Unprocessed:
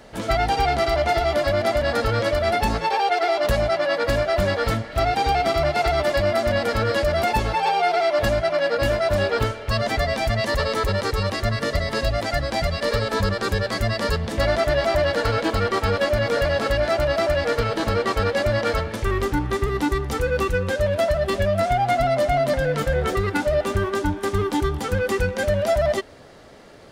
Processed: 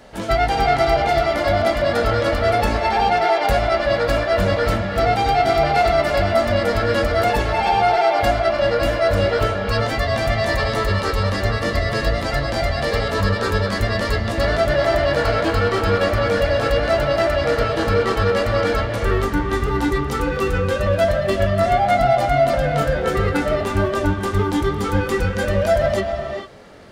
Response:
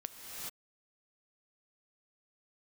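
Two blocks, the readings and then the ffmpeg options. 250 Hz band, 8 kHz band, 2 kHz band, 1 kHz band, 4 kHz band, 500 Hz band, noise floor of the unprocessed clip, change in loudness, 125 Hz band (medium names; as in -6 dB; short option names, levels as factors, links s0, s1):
+3.5 dB, 0.0 dB, +2.5 dB, +4.0 dB, +1.5 dB, +3.0 dB, -35 dBFS, +3.0 dB, +3.0 dB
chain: -filter_complex "[0:a]asplit=2[s0][s1];[1:a]atrim=start_sample=2205,lowpass=3600,adelay=21[s2];[s1][s2]afir=irnorm=-1:irlink=0,volume=1[s3];[s0][s3]amix=inputs=2:normalize=0"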